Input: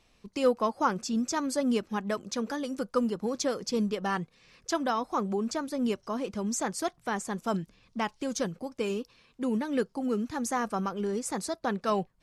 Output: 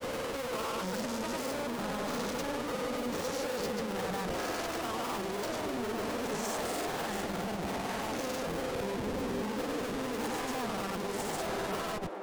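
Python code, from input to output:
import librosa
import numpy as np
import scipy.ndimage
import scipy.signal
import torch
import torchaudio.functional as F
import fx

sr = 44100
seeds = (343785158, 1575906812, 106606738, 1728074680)

y = fx.spec_swells(x, sr, rise_s=2.04)
y = fx.schmitt(y, sr, flips_db=-34.0)
y = fx.granulator(y, sr, seeds[0], grain_ms=100.0, per_s=20.0, spray_ms=100.0, spread_st=0)
y = fx.echo_stepped(y, sr, ms=476, hz=390.0, octaves=0.7, feedback_pct=70, wet_db=-1.5)
y = y * librosa.db_to_amplitude(-8.5)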